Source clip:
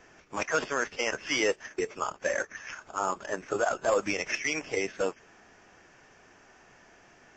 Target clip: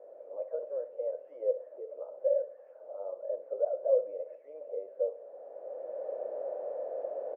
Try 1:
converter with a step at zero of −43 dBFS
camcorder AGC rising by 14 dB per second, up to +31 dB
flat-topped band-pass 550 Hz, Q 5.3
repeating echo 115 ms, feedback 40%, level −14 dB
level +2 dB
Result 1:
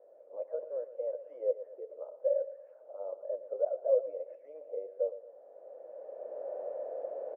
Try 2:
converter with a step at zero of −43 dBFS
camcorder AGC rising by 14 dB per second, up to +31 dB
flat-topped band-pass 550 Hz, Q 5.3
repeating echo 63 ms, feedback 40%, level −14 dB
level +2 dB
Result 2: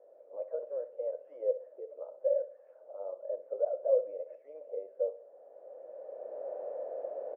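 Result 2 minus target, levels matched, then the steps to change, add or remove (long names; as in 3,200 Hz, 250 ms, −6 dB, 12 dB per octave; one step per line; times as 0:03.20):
converter with a step at zero: distortion −8 dB
change: converter with a step at zero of −33.5 dBFS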